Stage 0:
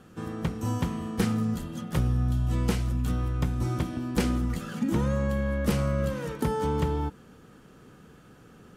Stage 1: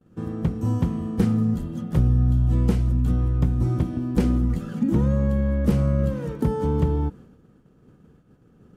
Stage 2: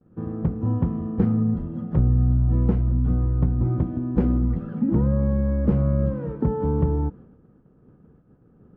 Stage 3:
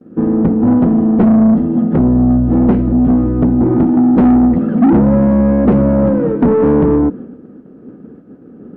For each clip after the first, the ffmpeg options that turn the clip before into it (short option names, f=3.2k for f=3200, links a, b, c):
-af "tiltshelf=f=690:g=7,agate=range=-33dB:threshold=-40dB:ratio=3:detection=peak"
-af "lowpass=1.3k"
-filter_complex "[0:a]equalizer=f=125:t=o:w=1:g=-5,equalizer=f=250:t=o:w=1:g=10,equalizer=f=1k:t=o:w=1:g=-9,asplit=2[a][b];[b]highpass=f=720:p=1,volume=28dB,asoftclip=type=tanh:threshold=-3dB[c];[a][c]amix=inputs=2:normalize=0,lowpass=f=1.1k:p=1,volume=-6dB,volume=2dB"